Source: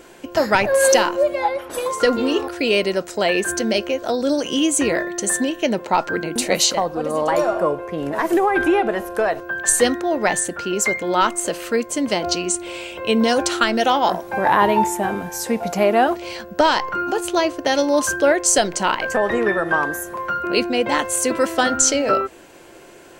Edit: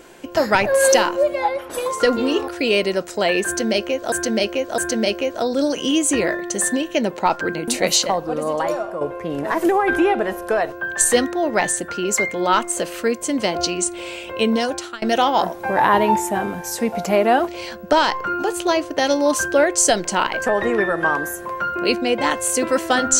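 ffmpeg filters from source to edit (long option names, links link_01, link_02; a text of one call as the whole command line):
ffmpeg -i in.wav -filter_complex "[0:a]asplit=5[link_01][link_02][link_03][link_04][link_05];[link_01]atrim=end=4.122[link_06];[link_02]atrim=start=3.458:end=4.122[link_07];[link_03]atrim=start=3.458:end=7.69,asetpts=PTS-STARTPTS,afade=type=out:start_time=3.602:duration=0.63:silence=0.298538[link_08];[link_04]atrim=start=7.69:end=13.7,asetpts=PTS-STARTPTS,afade=type=in:duration=0.004:curve=hsin:silence=0.298538,afade=type=out:start_time=5.4:duration=0.61:silence=0.0630957[link_09];[link_05]atrim=start=13.7,asetpts=PTS-STARTPTS,afade=type=in:duration=0.004:curve=hsin:silence=0.0630957[link_10];[link_06][link_07]acrossfade=duration=0.004:curve1=hsin:curve2=hsin[link_11];[link_08][link_09][link_10]concat=n=3:v=0:a=1[link_12];[link_11][link_12]acrossfade=duration=0.004:curve1=hsin:curve2=hsin" out.wav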